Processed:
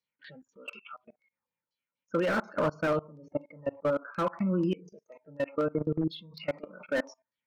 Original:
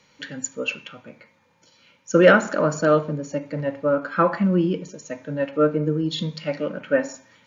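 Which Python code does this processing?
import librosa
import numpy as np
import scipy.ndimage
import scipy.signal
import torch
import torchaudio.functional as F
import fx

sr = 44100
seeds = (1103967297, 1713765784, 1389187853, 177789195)

y = fx.noise_reduce_blind(x, sr, reduce_db=26)
y = fx.level_steps(y, sr, step_db=23)
y = fx.filter_lfo_lowpass(y, sr, shape='saw_down', hz=4.1, low_hz=960.0, high_hz=5400.0, q=2.7)
y = fx.slew_limit(y, sr, full_power_hz=84.0)
y = F.gain(torch.from_numpy(y), -4.0).numpy()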